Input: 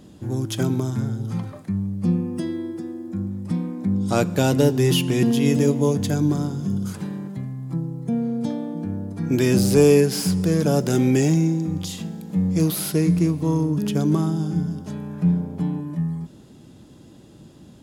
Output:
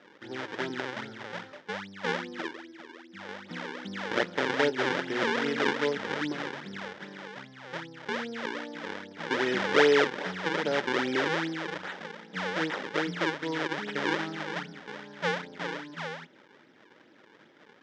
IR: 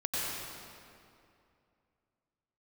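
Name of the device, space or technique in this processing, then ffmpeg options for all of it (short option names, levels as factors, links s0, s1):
circuit-bent sampling toy: -filter_complex "[0:a]asettb=1/sr,asplit=3[s0][s1][s2];[s0]atrim=end=2.484[s3];[s1]atrim=start=2.48:end=3.29,asetpts=PTS-STARTPTS,afade=t=in:d=0.004:c=qsin,afade=t=out:st=0.806:d=0.004:c=qsin,equalizer=f=900:w=0.34:g=-13[s4];[s2]atrim=start=3.286[s5];[s3][s4]acrossfade=d=0.004:c1=hsin:c2=qsin[s6];[s6][s5]acrossfade=d=0.004:c1=qsin:c2=hsin,acrusher=samples=39:mix=1:aa=0.000001:lfo=1:lforange=62.4:lforate=2.5,highpass=570,equalizer=f=700:t=q:w=4:g=-7,equalizer=f=1100:t=q:w=4:g=-8,equalizer=f=1700:t=q:w=4:g=3,equalizer=f=2600:t=q:w=4:g=-6,equalizer=f=4300:t=q:w=4:g=-8,lowpass=f=4500:w=0.5412,lowpass=f=4500:w=1.3066"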